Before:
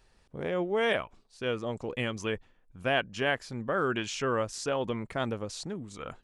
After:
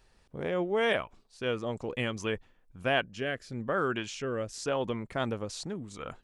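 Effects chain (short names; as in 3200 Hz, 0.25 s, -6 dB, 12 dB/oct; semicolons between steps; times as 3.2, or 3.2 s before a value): 3.05–5.12 rotary speaker horn 1 Hz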